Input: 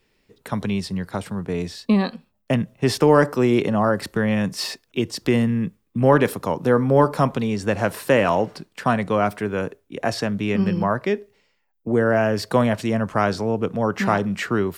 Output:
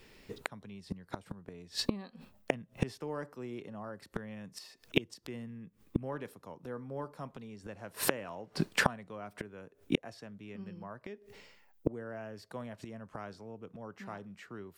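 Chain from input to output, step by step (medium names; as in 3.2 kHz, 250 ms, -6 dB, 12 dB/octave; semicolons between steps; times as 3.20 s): inverted gate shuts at -21 dBFS, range -32 dB; trim +7.5 dB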